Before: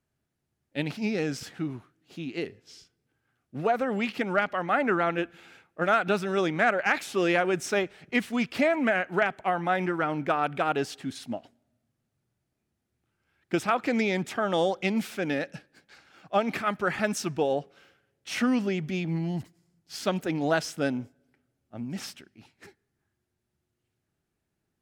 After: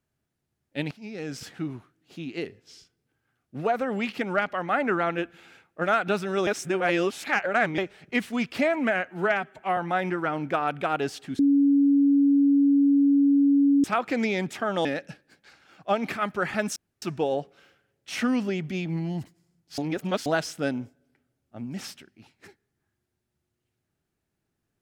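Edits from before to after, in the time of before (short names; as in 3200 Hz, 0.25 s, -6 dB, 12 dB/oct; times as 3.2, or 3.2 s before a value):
0.91–1.43 fade in quadratic, from -13.5 dB
6.47–7.78 reverse
9.05–9.53 stretch 1.5×
11.15–13.6 bleep 281 Hz -16 dBFS
14.61–15.3 cut
17.21 insert room tone 0.26 s
19.97–20.45 reverse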